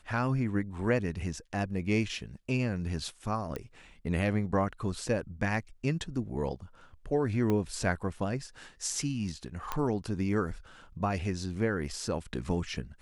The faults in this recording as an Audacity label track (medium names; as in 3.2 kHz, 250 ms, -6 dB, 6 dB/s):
3.560000	3.560000	pop -22 dBFS
7.500000	7.500000	pop -18 dBFS
9.720000	9.720000	pop -17 dBFS